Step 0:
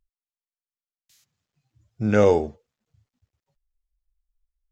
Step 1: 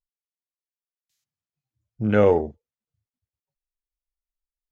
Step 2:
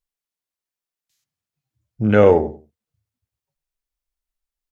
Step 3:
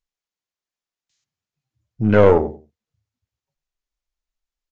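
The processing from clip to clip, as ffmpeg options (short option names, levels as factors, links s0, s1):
-af "afwtdn=0.0141"
-filter_complex "[0:a]asplit=2[s0][s1];[s1]adelay=94,lowpass=f=1300:p=1,volume=0.188,asplit=2[s2][s3];[s3]adelay=94,lowpass=f=1300:p=1,volume=0.22[s4];[s0][s2][s4]amix=inputs=3:normalize=0,volume=1.78"
-af "aeval=exprs='(tanh(2.24*val(0)+0.55)-tanh(0.55))/2.24':c=same,aresample=16000,aresample=44100,volume=1.41"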